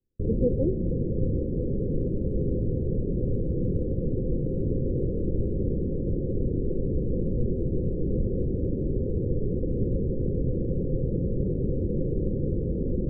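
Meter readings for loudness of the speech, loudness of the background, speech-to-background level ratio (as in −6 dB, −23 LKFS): −30.0 LKFS, −28.5 LKFS, −1.5 dB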